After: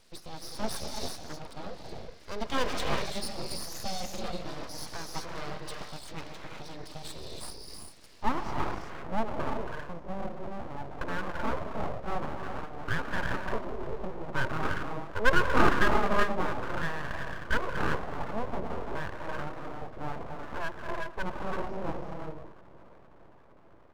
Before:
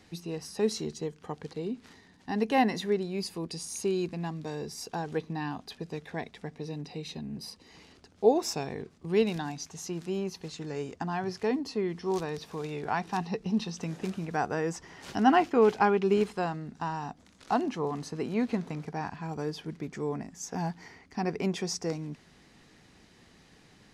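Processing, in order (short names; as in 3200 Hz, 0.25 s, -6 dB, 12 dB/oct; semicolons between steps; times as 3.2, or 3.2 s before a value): bin magnitudes rounded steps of 15 dB; low-pass sweep 5000 Hz -> 810 Hz, 8.04–8.87; analogue delay 0.461 s, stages 4096, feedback 68%, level -20 dB; non-linear reverb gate 0.41 s rising, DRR 0.5 dB; full-wave rectifier; gain -3 dB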